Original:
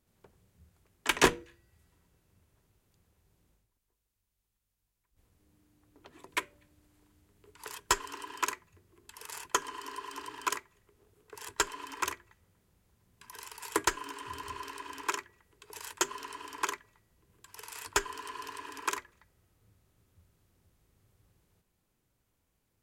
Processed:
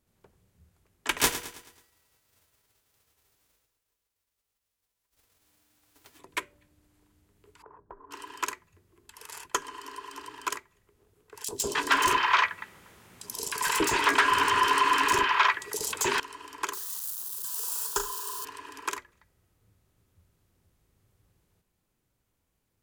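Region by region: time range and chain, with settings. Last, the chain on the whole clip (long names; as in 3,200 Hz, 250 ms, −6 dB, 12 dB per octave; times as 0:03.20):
0:01.17–0:06.18: spectral envelope flattened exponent 0.3 + notch comb filter 180 Hz + repeating echo 108 ms, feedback 46%, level −12 dB
0:07.62–0:08.11: inverse Chebyshev low-pass filter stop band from 3,600 Hz, stop band 60 dB + downward compressor 3 to 1, threshold −47 dBFS
0:11.44–0:16.20: mid-hump overdrive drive 31 dB, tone 3,800 Hz, clips at −9.5 dBFS + three-band delay without the direct sound highs, lows, mids 40/310 ms, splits 580/4,700 Hz
0:16.73–0:18.45: spike at every zero crossing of −27 dBFS + phaser with its sweep stopped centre 430 Hz, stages 8 + flutter between parallel walls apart 6.3 metres, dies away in 0.31 s
whole clip: no processing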